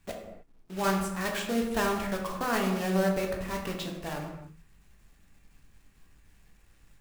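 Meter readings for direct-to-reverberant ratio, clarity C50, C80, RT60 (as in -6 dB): 0.5 dB, 5.0 dB, 7.0 dB, no single decay rate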